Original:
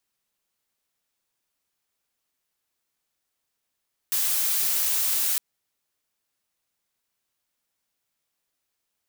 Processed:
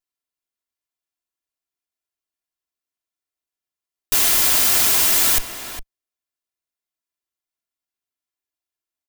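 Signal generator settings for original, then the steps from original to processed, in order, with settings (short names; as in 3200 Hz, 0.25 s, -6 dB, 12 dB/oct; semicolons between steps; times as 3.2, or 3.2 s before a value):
noise blue, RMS -24 dBFS 1.26 s
minimum comb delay 2.9 ms; sample leveller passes 5; outdoor echo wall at 70 m, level -9 dB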